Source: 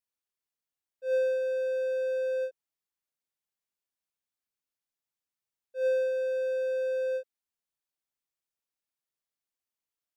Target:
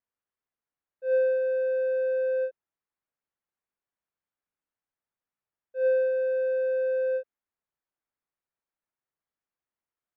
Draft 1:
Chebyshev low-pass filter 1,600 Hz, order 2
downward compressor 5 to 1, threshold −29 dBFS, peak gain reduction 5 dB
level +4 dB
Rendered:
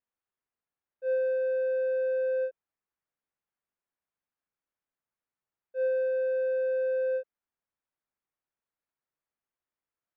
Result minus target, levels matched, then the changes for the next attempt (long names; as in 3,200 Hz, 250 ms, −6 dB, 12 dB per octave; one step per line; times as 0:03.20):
downward compressor: peak gain reduction +5 dB
remove: downward compressor 5 to 1, threshold −29 dBFS, peak gain reduction 5 dB